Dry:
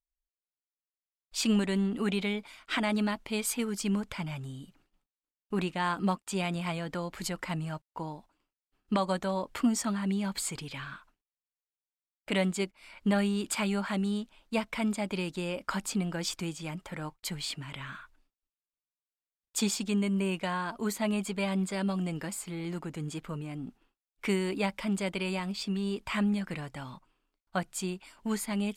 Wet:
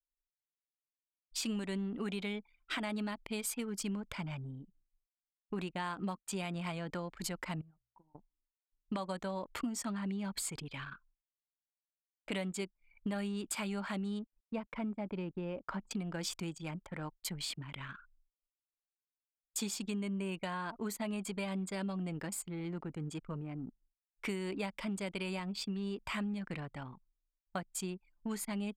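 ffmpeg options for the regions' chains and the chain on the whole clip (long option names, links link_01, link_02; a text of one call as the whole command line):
ffmpeg -i in.wav -filter_complex "[0:a]asettb=1/sr,asplit=3[link_01][link_02][link_03];[link_01]atrim=end=7.614[link_04];[link_02]atrim=start=7.61:end=8.15,asetpts=PTS-STARTPTS,afade=type=in:duration=0.004:curve=qsin,afade=type=out:start_time=0.536:duration=0.004:curve=qsin,agate=range=-33dB:threshold=-52dB:ratio=3:release=100:detection=peak,bandreject=frequency=60:width_type=h:width=6,bandreject=frequency=120:width_type=h:width=6,acompressor=threshold=-49dB:ratio=5:attack=3.2:release=140:knee=1:detection=peak[link_05];[link_03]atrim=start=8.146[link_06];[link_04][link_05]acrossfade=duration=0.004:curve1=hsin:curve2=qsin[link_07];[link_07][link_06]acrossfade=duration=0.004:curve1=qsin:curve2=hsin,asettb=1/sr,asplit=3[link_08][link_09][link_10];[link_08]atrim=end=14.194[link_11];[link_09]atrim=start=14.19:end=15.91,asetpts=PTS-STARTPTS,afade=type=in:duration=0.004:curve=qsin,afade=type=out:start_time=1.716:duration=0.004:curve=qsin,lowpass=frequency=1100:poles=1,aeval=exprs='val(0)*gte(abs(val(0)),0.00168)':channel_layout=same[link_12];[link_10]atrim=start=15.906[link_13];[link_11][link_12]acrossfade=duration=0.004:curve1=hsin:curve2=qsin[link_14];[link_14][link_13]acrossfade=duration=0.004:curve1=qsin:curve2=hsin,anlmdn=0.251,highshelf=frequency=9700:gain=4,acompressor=threshold=-32dB:ratio=4,volume=-3dB" out.wav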